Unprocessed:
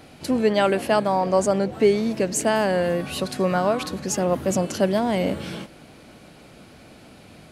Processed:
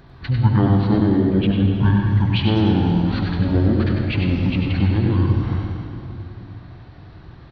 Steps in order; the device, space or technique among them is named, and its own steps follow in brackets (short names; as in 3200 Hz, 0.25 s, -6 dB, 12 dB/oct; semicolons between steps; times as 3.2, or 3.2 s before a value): monster voice (pitch shift -12 st; formant shift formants -4.5 st; low shelf 130 Hz +3.5 dB; echo 98 ms -6 dB; reverb RT60 2.7 s, pre-delay 67 ms, DRR 2.5 dB)